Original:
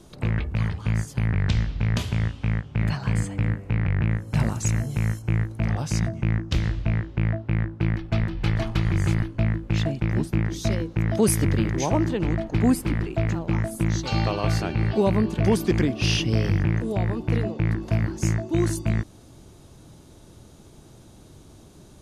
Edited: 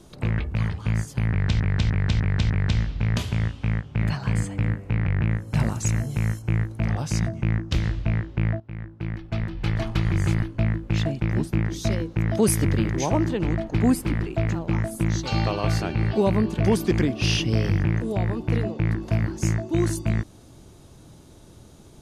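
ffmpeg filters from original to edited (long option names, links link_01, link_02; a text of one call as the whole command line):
ffmpeg -i in.wav -filter_complex "[0:a]asplit=6[link_01][link_02][link_03][link_04][link_05][link_06];[link_01]atrim=end=1.602[link_07];[link_02]atrim=start=1.298:end=1.602[link_08];[link_03]atrim=start=1.298:end=1.602[link_09];[link_04]atrim=start=1.298:end=1.602[link_10];[link_05]atrim=start=1.298:end=7.4,asetpts=PTS-STARTPTS,afade=type=out:start_time=6.098:duration=0.004:curve=hsin:silence=0.177828[link_11];[link_06]atrim=start=7.4,asetpts=PTS-STARTPTS,afade=type=in:duration=1.35:silence=0.177828[link_12];[link_07][link_08]acrossfade=duration=0.004:curve1=hsin:curve2=hsin[link_13];[link_13][link_09]acrossfade=duration=0.004:curve1=hsin:curve2=hsin[link_14];[link_14][link_10]acrossfade=duration=0.004:curve1=hsin:curve2=hsin[link_15];[link_11][link_12]concat=n=2:v=0:a=1[link_16];[link_15][link_16]acrossfade=duration=0.004:curve1=hsin:curve2=hsin" out.wav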